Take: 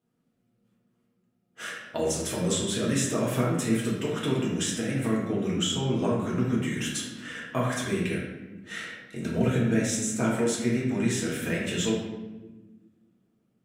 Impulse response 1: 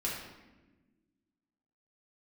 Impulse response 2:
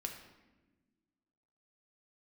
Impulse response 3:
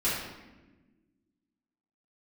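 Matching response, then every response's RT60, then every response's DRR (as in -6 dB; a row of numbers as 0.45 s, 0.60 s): 1; 1.2 s, 1.2 s, 1.2 s; -5.5 dB, 2.5 dB, -12.0 dB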